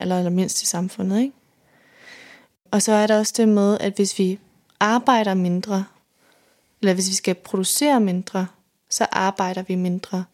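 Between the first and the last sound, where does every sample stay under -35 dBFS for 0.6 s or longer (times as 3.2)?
1.3–2.08
5.86–6.83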